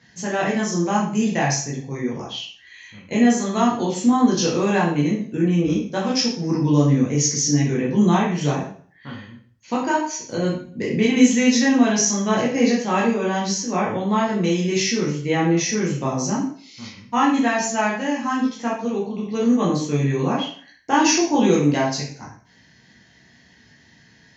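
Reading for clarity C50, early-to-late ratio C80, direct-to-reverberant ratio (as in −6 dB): 5.0 dB, 8.5 dB, −5.5 dB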